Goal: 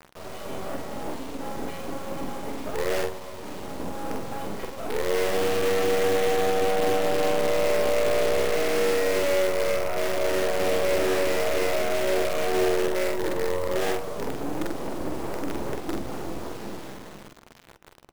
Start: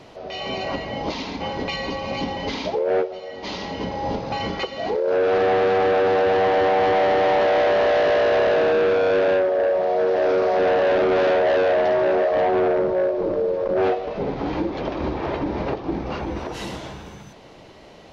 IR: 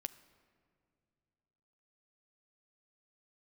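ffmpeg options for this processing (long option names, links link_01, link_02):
-filter_complex "[0:a]bandpass=frequency=320:width_type=q:width=0.66:csg=0,acrusher=bits=4:dc=4:mix=0:aa=0.000001,asoftclip=type=tanh:threshold=-20dB,asplit=2[link_01][link_02];[1:a]atrim=start_sample=2205,adelay=46[link_03];[link_02][link_03]afir=irnorm=-1:irlink=0,volume=-1dB[link_04];[link_01][link_04]amix=inputs=2:normalize=0"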